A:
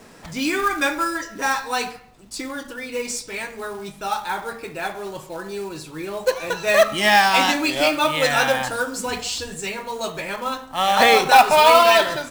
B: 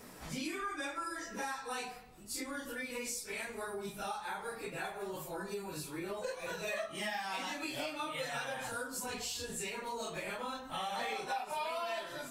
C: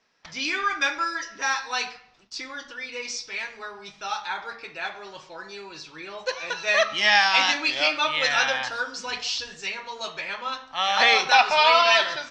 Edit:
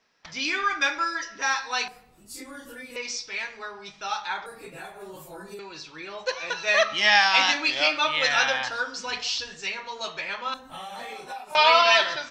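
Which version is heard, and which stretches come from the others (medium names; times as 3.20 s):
C
1.88–2.96 s: from B
4.46–5.59 s: from B
10.54–11.55 s: from B
not used: A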